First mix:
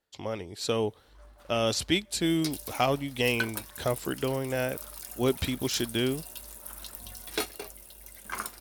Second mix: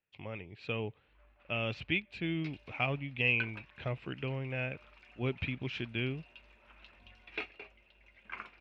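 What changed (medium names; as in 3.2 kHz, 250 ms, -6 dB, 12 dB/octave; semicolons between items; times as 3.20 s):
speech: add peaking EQ 130 Hz +10.5 dB 1.2 oct; master: add four-pole ladder low-pass 2.7 kHz, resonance 75%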